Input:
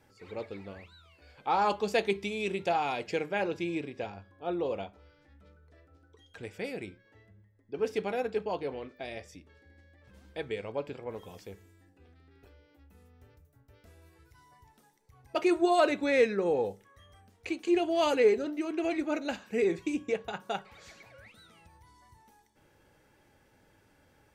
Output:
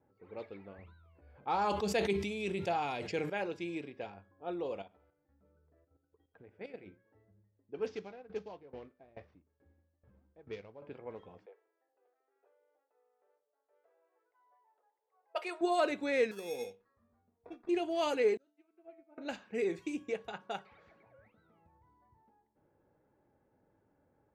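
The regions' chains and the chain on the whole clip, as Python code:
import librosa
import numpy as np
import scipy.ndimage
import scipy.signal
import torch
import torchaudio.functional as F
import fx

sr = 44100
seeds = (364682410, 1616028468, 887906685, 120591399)

y = fx.chain(x, sr, fx.peak_eq(hz=61.0, db=11.0, octaves=2.7),
    fx.sustainer(db_per_s=46.0), at=(0.78, 3.3))
y = fx.chain(y, sr, fx.level_steps(step_db=12),
    fx.echo_feedback(ms=89, feedback_pct=43, wet_db=-17.5), at=(4.82, 6.86))
y = fx.chain(y, sr, fx.cvsd(bps=32000),
    fx.low_shelf(hz=160.0, db=8.5),
    fx.tremolo_decay(direction='decaying', hz=2.3, depth_db=19), at=(7.86, 10.82))
y = fx.chain(y, sr, fx.steep_highpass(hz=460.0, slope=36),
    fx.peak_eq(hz=6400.0, db=-11.5, octaves=0.26), at=(11.46, 15.61))
y = fx.chain(y, sr, fx.sample_hold(seeds[0], rate_hz=3000.0, jitter_pct=0),
    fx.comb_fb(f0_hz=240.0, decay_s=0.18, harmonics='all', damping=0.0, mix_pct=70), at=(16.31, 17.69))
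y = fx.chain(y, sr, fx.comb_fb(f0_hz=220.0, decay_s=1.2, harmonics='all', damping=0.0, mix_pct=90),
    fx.upward_expand(threshold_db=-55.0, expansion=2.5), at=(18.37, 19.18))
y = fx.env_lowpass(y, sr, base_hz=830.0, full_db=-28.5)
y = fx.low_shelf(y, sr, hz=71.0, db=-12.0)
y = y * librosa.db_to_amplitude(-5.5)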